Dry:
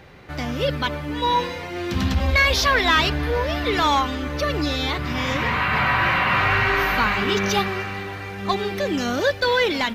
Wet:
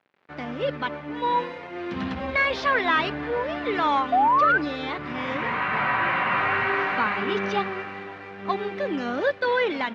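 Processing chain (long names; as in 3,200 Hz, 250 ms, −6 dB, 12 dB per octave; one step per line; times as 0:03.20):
sound drawn into the spectrogram rise, 0:04.12–0:04.58, 690–1,600 Hz −16 dBFS
dead-zone distortion −40.5 dBFS
band-pass filter 200–2,300 Hz
level −2 dB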